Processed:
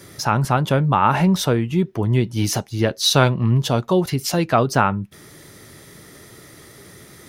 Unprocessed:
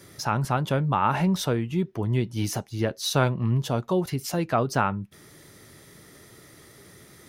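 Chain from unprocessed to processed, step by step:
0:02.45–0:04.66: dynamic equaliser 4,000 Hz, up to +5 dB, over −42 dBFS, Q 0.92
level +6.5 dB

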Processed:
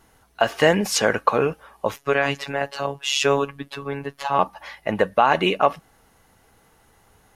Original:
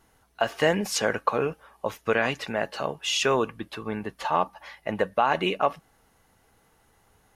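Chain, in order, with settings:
0:01.96–0:04.39: phases set to zero 140 Hz
level +5.5 dB

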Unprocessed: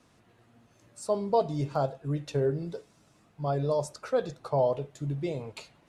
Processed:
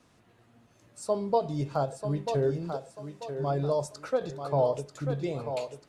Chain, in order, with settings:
feedback echo with a high-pass in the loop 940 ms, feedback 37%, high-pass 240 Hz, level −7 dB
every ending faded ahead of time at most 260 dB per second

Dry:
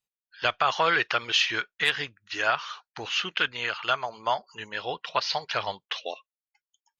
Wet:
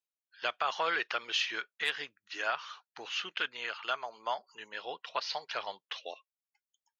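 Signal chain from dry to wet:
high-pass filter 290 Hz 12 dB per octave
level −8 dB

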